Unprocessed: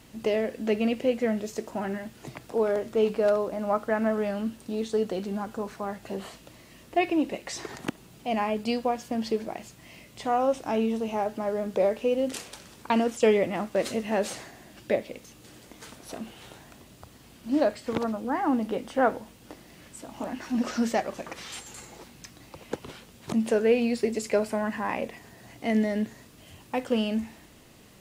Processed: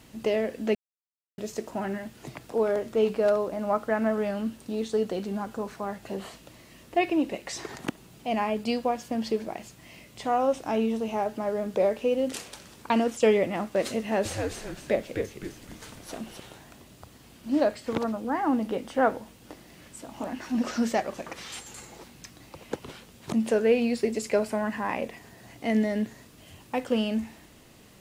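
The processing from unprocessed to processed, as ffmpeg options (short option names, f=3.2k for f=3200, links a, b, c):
-filter_complex "[0:a]asettb=1/sr,asplit=3[a][b][c];[a]atrim=end=13.994[d];[b]atrim=start=13.99:end=16.4,asetpts=PTS-STARTPTS,afade=t=in:d=0.004:c=qsin,afade=t=out:st=2.406:d=0.004:c=qsin,asplit=6[e][f][g][h][i][j];[f]adelay=260,afreqshift=-120,volume=-4.5dB[k];[g]adelay=520,afreqshift=-240,volume=-12.7dB[l];[h]adelay=780,afreqshift=-360,volume=-20.9dB[m];[i]adelay=1040,afreqshift=-480,volume=-29dB[n];[j]adelay=1300,afreqshift=-600,volume=-37.2dB[o];[e][k][l][m][n][o]amix=inputs=6:normalize=0,atrim=end_sample=106281[p];[c]atrim=start=16.396[q];[d][p]acrossfade=d=0.004:c1=hsin:c2=qsin[r];[r][q]acrossfade=d=0.004:c1=qsin:c2=hsin,asplit=3[s][t][u];[s]atrim=end=0.75,asetpts=PTS-STARTPTS,afade=t=out:st=0.746:d=0.004:c=hsin[v];[t]atrim=start=0.75:end=1.38,asetpts=PTS-STARTPTS,volume=0[w];[u]atrim=start=1.38,asetpts=PTS-STARTPTS,afade=t=in:d=0.004:c=hsin[x];[v][w][x]concat=n=3:v=0:a=1"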